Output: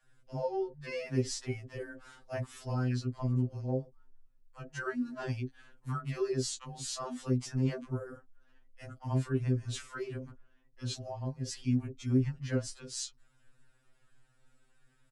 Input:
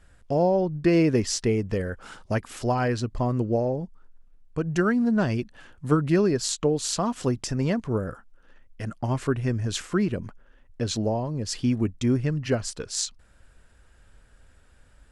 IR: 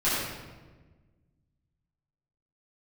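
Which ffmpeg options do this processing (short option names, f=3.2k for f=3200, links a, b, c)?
-filter_complex "[0:a]acrossover=split=630[a][b];[a]adelay=40[c];[c][b]amix=inputs=2:normalize=0,afftfilt=real='re*2.45*eq(mod(b,6),0)':imag='im*2.45*eq(mod(b,6),0)':win_size=2048:overlap=0.75,volume=-7.5dB"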